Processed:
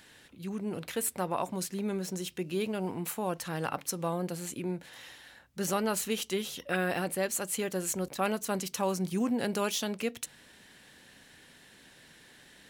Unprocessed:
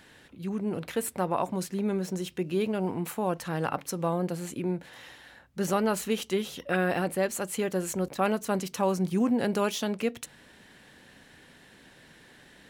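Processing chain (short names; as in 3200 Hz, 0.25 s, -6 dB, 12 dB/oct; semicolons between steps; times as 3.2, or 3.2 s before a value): high shelf 2600 Hz +8 dB; gain -4.5 dB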